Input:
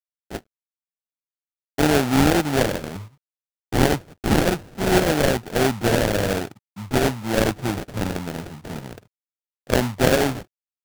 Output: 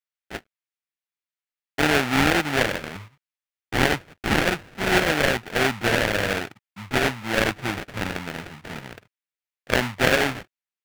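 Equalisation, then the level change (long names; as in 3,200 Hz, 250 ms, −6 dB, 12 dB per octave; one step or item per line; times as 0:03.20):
parametric band 2,100 Hz +11.5 dB 2 octaves
−5.5 dB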